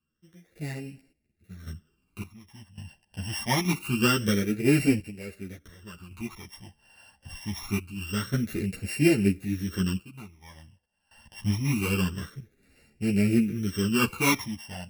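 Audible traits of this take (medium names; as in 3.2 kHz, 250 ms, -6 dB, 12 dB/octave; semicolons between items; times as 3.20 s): a buzz of ramps at a fixed pitch in blocks of 16 samples; phasing stages 12, 0.25 Hz, lowest notch 390–1100 Hz; random-step tremolo 1.8 Hz, depth 90%; a shimmering, thickened sound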